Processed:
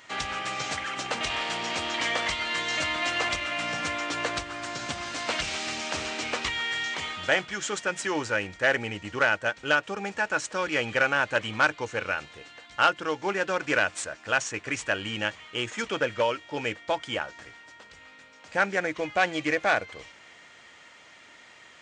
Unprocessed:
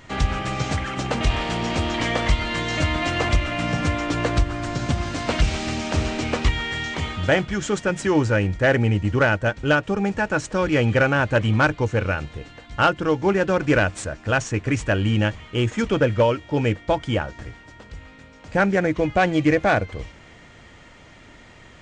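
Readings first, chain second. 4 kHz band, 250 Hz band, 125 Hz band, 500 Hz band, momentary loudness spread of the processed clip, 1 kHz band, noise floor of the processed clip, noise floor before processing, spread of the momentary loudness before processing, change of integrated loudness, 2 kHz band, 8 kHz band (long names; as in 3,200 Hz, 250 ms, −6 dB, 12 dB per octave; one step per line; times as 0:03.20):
−0.5 dB, −13.0 dB, −20.0 dB, −8.0 dB, 8 LU, −4.0 dB, −52 dBFS, −47 dBFS, 7 LU, −5.5 dB, −1.5 dB, 0.0 dB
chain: high-pass filter 1,200 Hz 6 dB per octave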